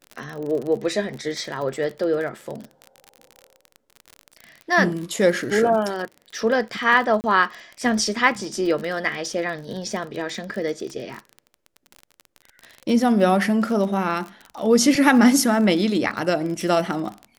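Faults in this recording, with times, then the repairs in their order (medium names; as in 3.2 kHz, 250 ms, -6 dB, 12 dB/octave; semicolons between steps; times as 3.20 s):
crackle 35 per s -28 dBFS
7.21–7.24 s: dropout 29 ms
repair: de-click; interpolate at 7.21 s, 29 ms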